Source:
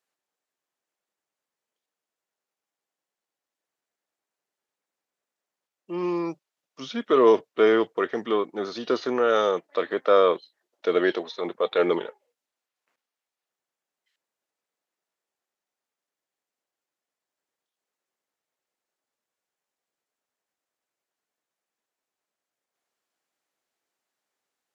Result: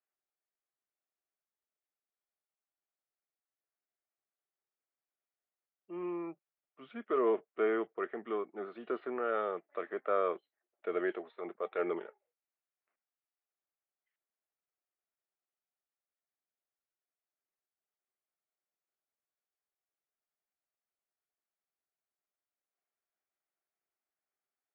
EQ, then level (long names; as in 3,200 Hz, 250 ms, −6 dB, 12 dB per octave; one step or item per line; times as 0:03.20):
high-frequency loss of the air 350 metres
loudspeaker in its box 280–2,500 Hz, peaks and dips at 280 Hz −7 dB, 500 Hz −8 dB, 950 Hz −8 dB, 1,700 Hz −3 dB
−6.0 dB